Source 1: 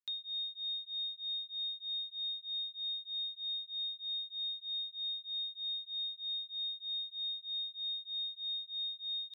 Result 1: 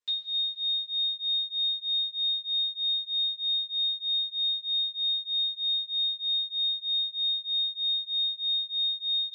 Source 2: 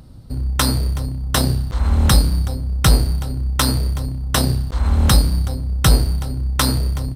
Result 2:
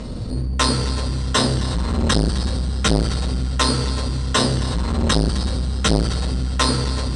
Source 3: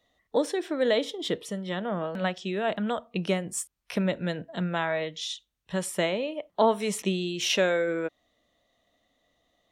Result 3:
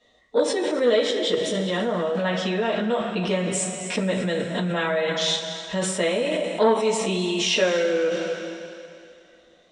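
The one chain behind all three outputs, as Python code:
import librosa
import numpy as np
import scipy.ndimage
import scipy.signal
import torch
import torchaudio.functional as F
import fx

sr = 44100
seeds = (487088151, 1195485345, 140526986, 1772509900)

p1 = fx.low_shelf(x, sr, hz=61.0, db=-6.0)
p2 = p1 + fx.echo_single(p1, sr, ms=263, db=-16.5, dry=0)
p3 = fx.rev_double_slope(p2, sr, seeds[0], early_s=0.2, late_s=2.6, knee_db=-18, drr_db=-7.0)
p4 = fx.over_compress(p3, sr, threshold_db=-26.0, ratio=-0.5)
p5 = p3 + F.gain(torch.from_numpy(p4), -2.5).numpy()
p6 = scipy.signal.sosfilt(scipy.signal.ellip(4, 1.0, 80, 8300.0, 'lowpass', fs=sr, output='sos'), p5)
p7 = fx.transformer_sat(p6, sr, knee_hz=440.0)
y = F.gain(torch.from_numpy(p7), -4.0).numpy()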